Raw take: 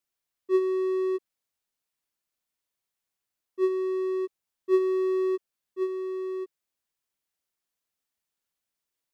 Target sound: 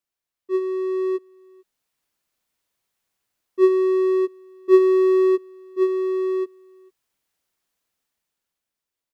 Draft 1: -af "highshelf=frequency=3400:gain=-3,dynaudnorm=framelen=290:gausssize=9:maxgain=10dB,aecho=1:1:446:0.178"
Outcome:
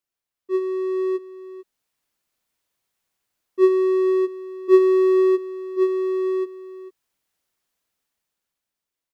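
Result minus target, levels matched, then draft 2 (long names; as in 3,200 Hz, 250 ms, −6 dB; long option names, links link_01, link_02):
echo-to-direct +12 dB
-af "highshelf=frequency=3400:gain=-3,dynaudnorm=framelen=290:gausssize=9:maxgain=10dB,aecho=1:1:446:0.0447"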